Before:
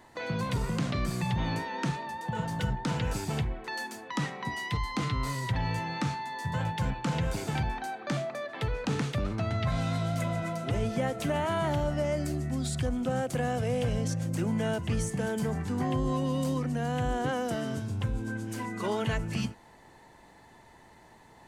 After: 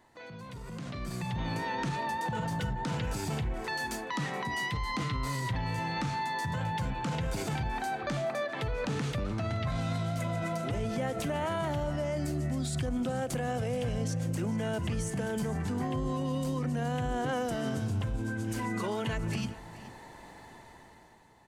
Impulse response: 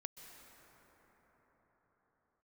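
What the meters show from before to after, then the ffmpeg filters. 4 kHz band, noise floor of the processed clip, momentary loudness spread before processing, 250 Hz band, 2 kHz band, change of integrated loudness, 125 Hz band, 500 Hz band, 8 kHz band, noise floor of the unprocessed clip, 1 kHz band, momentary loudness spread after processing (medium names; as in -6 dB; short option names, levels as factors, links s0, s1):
-1.5 dB, -51 dBFS, 5 LU, -2.0 dB, -0.5 dB, -1.5 dB, -2.5 dB, -2.0 dB, -1.0 dB, -55 dBFS, -0.5 dB, 6 LU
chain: -af "alimiter=level_in=2.24:limit=0.0631:level=0:latency=1:release=96,volume=0.447,dynaudnorm=f=230:g=9:m=4.73,aecho=1:1:427:0.141,volume=0.422"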